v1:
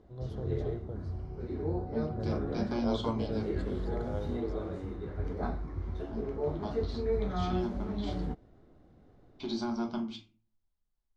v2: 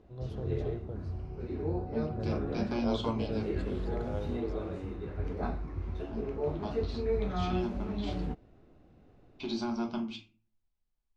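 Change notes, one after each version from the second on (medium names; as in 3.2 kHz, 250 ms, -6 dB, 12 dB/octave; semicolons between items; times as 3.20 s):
master: add peaking EQ 2.6 kHz +11 dB 0.23 oct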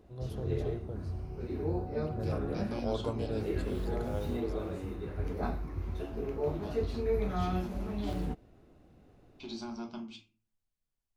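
second voice -7.5 dB; master: remove distance through air 90 m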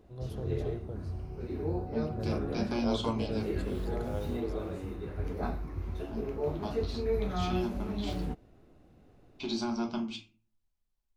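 second voice +8.0 dB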